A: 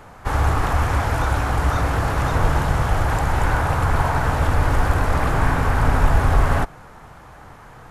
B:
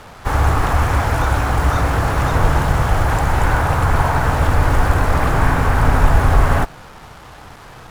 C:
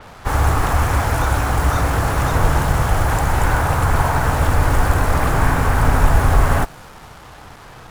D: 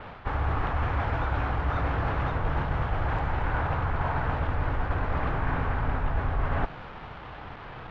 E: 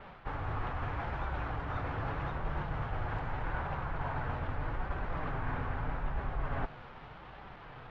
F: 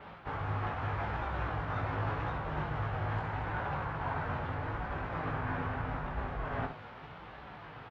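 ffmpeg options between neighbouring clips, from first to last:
ffmpeg -i in.wav -af "acrusher=bits=6:mix=0:aa=0.5,volume=3.5dB" out.wav
ffmpeg -i in.wav -af "adynamicequalizer=threshold=0.00794:dfrequency=5900:dqfactor=0.7:tfrequency=5900:tqfactor=0.7:attack=5:release=100:ratio=0.375:range=3:mode=boostabove:tftype=highshelf,volume=-1dB" out.wav
ffmpeg -i in.wav -af "lowpass=frequency=3300:width=0.5412,lowpass=frequency=3300:width=1.3066,areverse,acompressor=threshold=-23dB:ratio=5,areverse,volume=-1.5dB" out.wav
ffmpeg -i in.wav -af "flanger=delay=5.1:depth=3.2:regen=-42:speed=0.81:shape=sinusoidal,volume=-4dB" out.wav
ffmpeg -i in.wav -filter_complex "[0:a]highpass=64,asplit=2[link_01][link_02];[link_02]aecho=0:1:19|67:0.668|0.422[link_03];[link_01][link_03]amix=inputs=2:normalize=0" out.wav

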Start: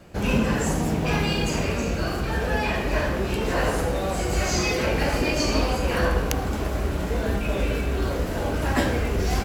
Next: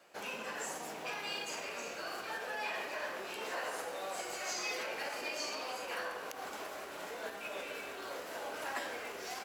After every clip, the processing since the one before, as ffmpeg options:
ffmpeg -i in.wav -af "alimiter=limit=-17dB:level=0:latency=1:release=127,highpass=640,volume=-8dB" out.wav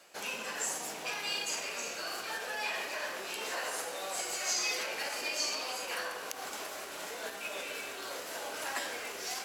ffmpeg -i in.wav -af "equalizer=frequency=8500:width_type=o:width=2.8:gain=9.5,areverse,acompressor=mode=upward:threshold=-44dB:ratio=2.5,areverse" out.wav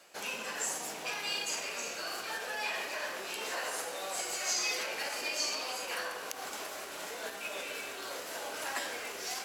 ffmpeg -i in.wav -af anull out.wav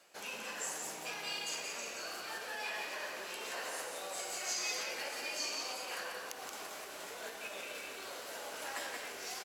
ffmpeg -i in.wav -af "aecho=1:1:177:0.562,volume=-5.5dB" out.wav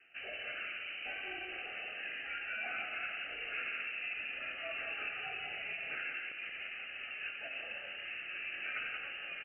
ffmpeg -i in.wav -af "asuperstop=centerf=2200:order=4:qfactor=4.3,highshelf=frequency=2100:gain=-10.5,lowpass=frequency=2700:width_type=q:width=0.5098,lowpass=frequency=2700:width_type=q:width=0.6013,lowpass=frequency=2700:width_type=q:width=0.9,lowpass=frequency=2700:width_type=q:width=2.563,afreqshift=-3200,volume=5.5dB" out.wav

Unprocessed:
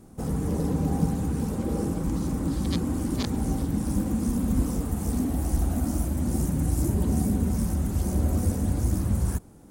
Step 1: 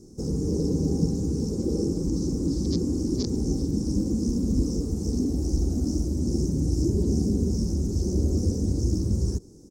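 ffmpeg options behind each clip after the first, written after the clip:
ffmpeg -i in.wav -filter_complex "[0:a]acrossover=split=5100[link_01][link_02];[link_02]acompressor=threshold=-49dB:ratio=4:attack=1:release=60[link_03];[link_01][link_03]amix=inputs=2:normalize=0,firequalizer=gain_entry='entry(240,0);entry(380,8);entry(660,-12);entry(1600,-19);entry(3200,-15);entry(5400,14);entry(10000,-7)':delay=0.05:min_phase=1" out.wav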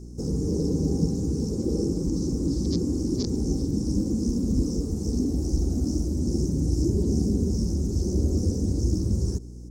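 ffmpeg -i in.wav -af "aeval=exprs='val(0)+0.0112*(sin(2*PI*60*n/s)+sin(2*PI*2*60*n/s)/2+sin(2*PI*3*60*n/s)/3+sin(2*PI*4*60*n/s)/4+sin(2*PI*5*60*n/s)/5)':channel_layout=same" out.wav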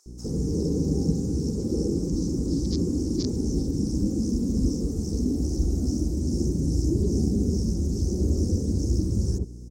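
ffmpeg -i in.wav -filter_complex "[0:a]acrossover=split=950[link_01][link_02];[link_01]adelay=60[link_03];[link_03][link_02]amix=inputs=2:normalize=0" out.wav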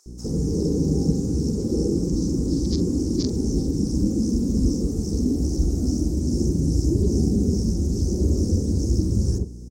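ffmpeg -i in.wav -filter_complex "[0:a]asplit=2[link_01][link_02];[link_02]adelay=45,volume=-12.5dB[link_03];[link_01][link_03]amix=inputs=2:normalize=0,volume=3dB" out.wav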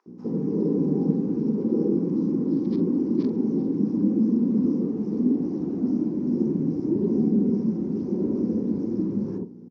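ffmpeg -i in.wav -af "highpass=frequency=180:width=0.5412,highpass=frequency=180:width=1.3066,equalizer=frequency=220:width_type=q:width=4:gain=4,equalizer=frequency=630:width_type=q:width=4:gain=-4,equalizer=frequency=980:width_type=q:width=4:gain=8,lowpass=frequency=2600:width=0.5412,lowpass=frequency=2600:width=1.3066" out.wav

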